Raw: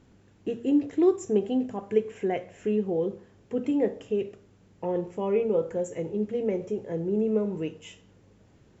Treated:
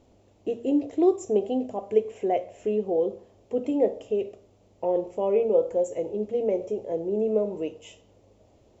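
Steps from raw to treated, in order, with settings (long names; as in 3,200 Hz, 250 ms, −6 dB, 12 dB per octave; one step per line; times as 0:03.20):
graphic EQ with 15 bands 160 Hz −11 dB, 630 Hz +10 dB, 1,600 Hz −12 dB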